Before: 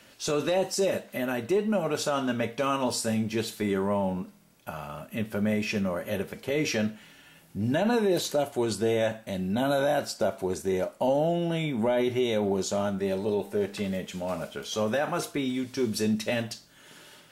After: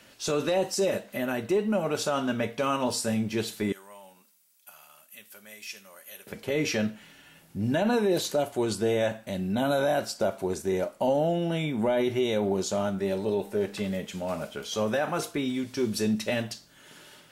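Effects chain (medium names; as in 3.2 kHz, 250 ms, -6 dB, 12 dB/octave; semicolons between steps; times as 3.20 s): 3.72–6.27 s: differentiator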